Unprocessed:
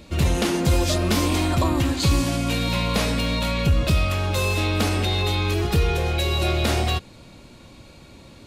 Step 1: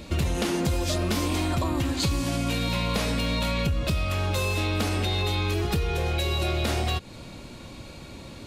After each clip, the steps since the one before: compressor 6:1, threshold -27 dBFS, peak gain reduction 12 dB; gain +4 dB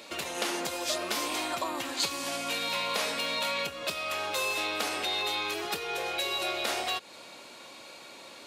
HPF 570 Hz 12 dB/oct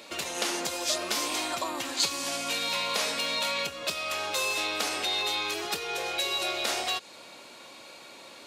dynamic EQ 6200 Hz, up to +5 dB, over -46 dBFS, Q 0.86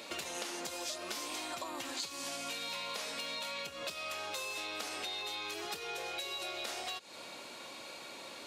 compressor 6:1, threshold -38 dBFS, peak gain reduction 15.5 dB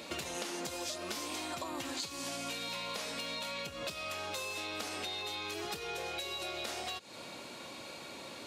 low shelf 230 Hz +12 dB

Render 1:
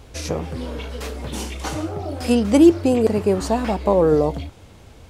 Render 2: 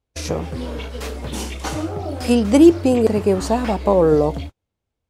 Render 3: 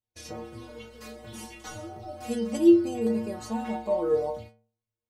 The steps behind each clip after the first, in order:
gate -31 dBFS, range -37 dB; gain +1.5 dB
metallic resonator 110 Hz, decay 0.56 s, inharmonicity 0.008

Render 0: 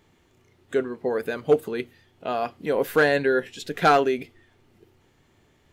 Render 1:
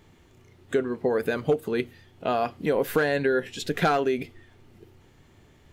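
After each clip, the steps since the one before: low shelf 170 Hz +6 dB; compressor 5:1, threshold -23 dBFS, peak gain reduction 10.5 dB; gain +3 dB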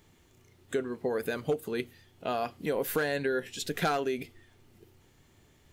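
high shelf 4700 Hz +10 dB; gain -6.5 dB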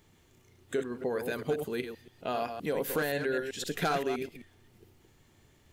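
reverse delay 0.13 s, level -7 dB; gain -1.5 dB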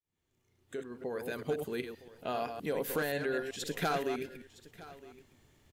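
opening faded in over 1.59 s; echo 0.963 s -18.5 dB; gain -2.5 dB

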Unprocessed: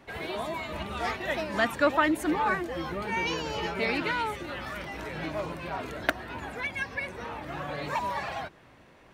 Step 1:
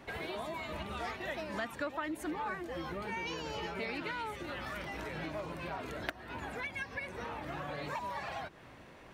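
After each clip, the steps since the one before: compressor 3:1, threshold -41 dBFS, peak gain reduction 17 dB; gain +1.5 dB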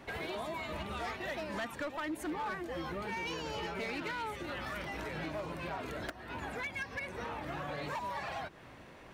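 hard clip -33.5 dBFS, distortion -16 dB; gain +1 dB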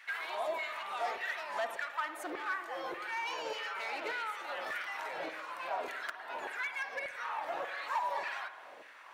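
LFO high-pass saw down 1.7 Hz 470–1900 Hz; spring tank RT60 1.1 s, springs 50 ms, chirp 50 ms, DRR 9 dB; gain -1 dB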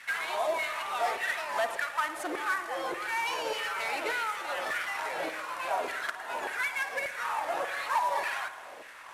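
CVSD 64 kbps; gain +6 dB

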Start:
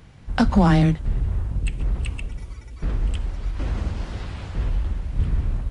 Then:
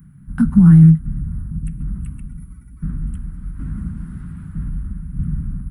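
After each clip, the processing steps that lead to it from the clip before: EQ curve 110 Hz 0 dB, 160 Hz +14 dB, 260 Hz +4 dB, 480 Hz -24 dB, 710 Hz -22 dB, 1400 Hz -2 dB, 2600 Hz -19 dB, 4400 Hz -24 dB, 6600 Hz -20 dB, 11000 Hz +14 dB; gain -2.5 dB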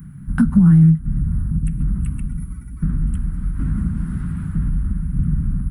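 compressor 2:1, threshold -25 dBFS, peak gain reduction 11 dB; gain +7.5 dB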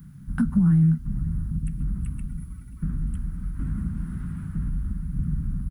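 bit-crush 10-bit; echo 0.533 s -19 dB; gain -7.5 dB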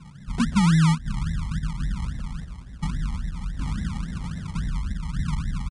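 decimation with a swept rate 33×, swing 60% 3.6 Hz; downsampling 22050 Hz

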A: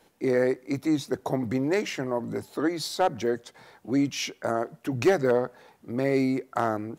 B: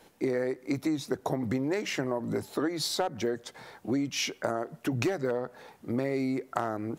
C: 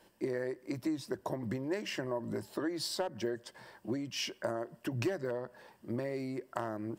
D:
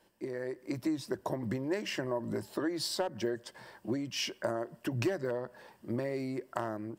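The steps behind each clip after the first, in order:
compressor 12:1, threshold -29 dBFS, peak gain reduction 14 dB; gain +3.5 dB
ripple EQ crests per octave 1.3, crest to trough 7 dB; gain -6.5 dB
AGC gain up to 6.5 dB; gain -4.5 dB

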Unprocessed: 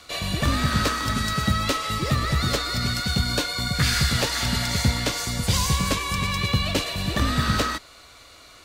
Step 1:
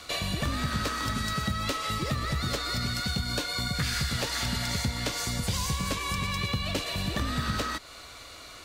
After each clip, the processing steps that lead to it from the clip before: compressor 3:1, threshold -32 dBFS, peak gain reduction 12.5 dB; gain +2.5 dB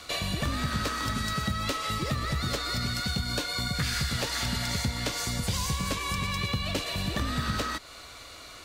nothing audible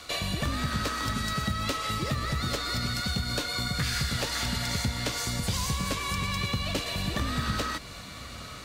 diffused feedback echo 0.952 s, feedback 60%, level -16 dB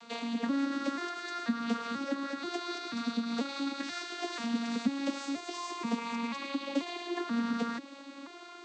arpeggiated vocoder minor triad, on A#3, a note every 0.486 s; gain -2.5 dB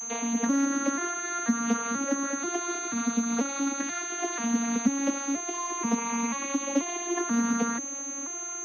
pulse-width modulation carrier 6300 Hz; gain +5.5 dB

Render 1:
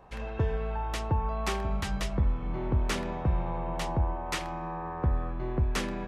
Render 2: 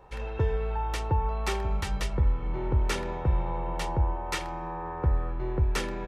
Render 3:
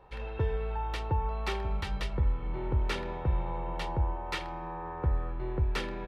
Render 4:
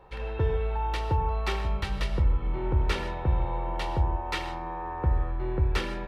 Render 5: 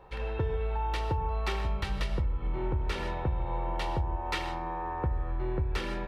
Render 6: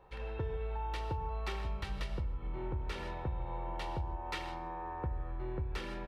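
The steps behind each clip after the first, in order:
comb 2.2 ms, depth 45%
resonant high shelf 5200 Hz -7 dB, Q 1.5; gain -3.5 dB
non-linear reverb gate 0.18 s flat, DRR 8 dB; gain +3 dB
compressor, threshold -26 dBFS, peak gain reduction 8 dB
echo 0.161 s -20.5 dB; gain -7 dB

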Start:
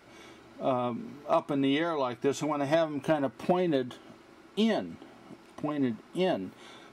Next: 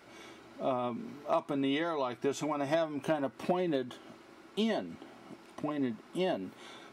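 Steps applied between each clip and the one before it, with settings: low shelf 110 Hz -7.5 dB; in parallel at 0 dB: compressor, threshold -34 dBFS, peak gain reduction 13 dB; on the sum: gain -6 dB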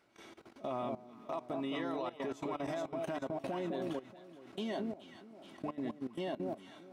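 echo with dull and thin repeats by turns 0.212 s, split 920 Hz, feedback 66%, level -3 dB; level quantiser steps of 17 dB; gain -3 dB

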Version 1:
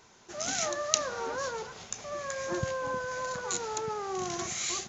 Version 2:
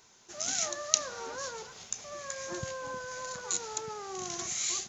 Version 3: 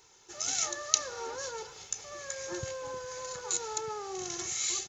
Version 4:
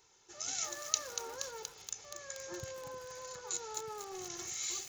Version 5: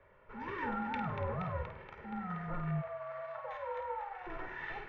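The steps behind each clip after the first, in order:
high shelf 3500 Hz +10.5 dB; gain -6.5 dB
comb 2.3 ms, depth 59%; gain -1 dB
lo-fi delay 0.237 s, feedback 80%, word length 6-bit, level -7.5 dB; gain -6.5 dB
flutter echo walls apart 8.8 m, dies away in 0.39 s; spectral gain 2.82–4.27, 330–860 Hz -28 dB; mistuned SSB -370 Hz 370–2400 Hz; gain +9.5 dB

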